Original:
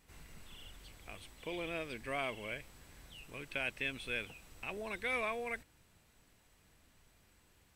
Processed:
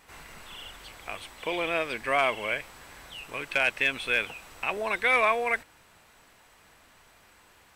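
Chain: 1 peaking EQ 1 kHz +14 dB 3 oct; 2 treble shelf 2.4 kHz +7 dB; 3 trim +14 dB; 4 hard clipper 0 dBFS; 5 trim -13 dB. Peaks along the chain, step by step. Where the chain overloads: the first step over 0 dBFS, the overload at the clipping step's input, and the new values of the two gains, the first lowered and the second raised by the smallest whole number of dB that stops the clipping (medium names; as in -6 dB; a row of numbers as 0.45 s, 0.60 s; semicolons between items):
-13.5 dBFS, -10.5 dBFS, +3.5 dBFS, 0.0 dBFS, -13.0 dBFS; step 3, 3.5 dB; step 3 +10 dB, step 5 -9 dB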